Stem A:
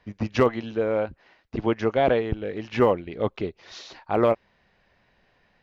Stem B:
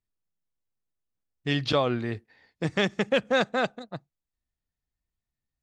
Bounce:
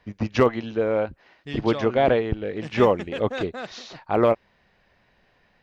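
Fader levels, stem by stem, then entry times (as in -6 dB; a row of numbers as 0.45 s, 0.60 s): +1.5 dB, -8.5 dB; 0.00 s, 0.00 s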